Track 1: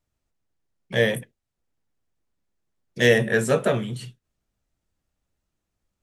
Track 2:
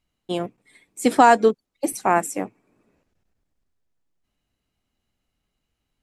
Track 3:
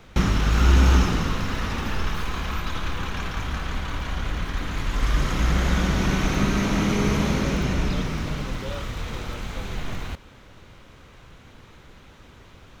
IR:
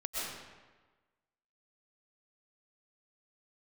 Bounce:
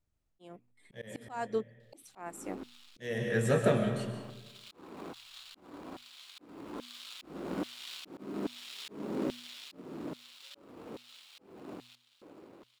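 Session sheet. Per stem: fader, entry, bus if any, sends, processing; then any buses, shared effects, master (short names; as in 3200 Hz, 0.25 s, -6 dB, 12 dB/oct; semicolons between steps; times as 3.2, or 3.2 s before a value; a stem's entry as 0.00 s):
-9.5 dB, 0.00 s, send -7.5 dB, low shelf 290 Hz +6.5 dB
-7.5 dB, 0.10 s, no send, gate with hold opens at -50 dBFS
-3.0 dB, 1.80 s, no send, median filter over 25 samples; notch 6200 Hz, Q 16; LFO high-pass square 1.2 Hz 310–3500 Hz; auto duck -15 dB, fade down 1.30 s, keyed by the first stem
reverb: on, RT60 1.3 s, pre-delay 85 ms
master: de-hum 121.8 Hz, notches 2; auto swell 0.681 s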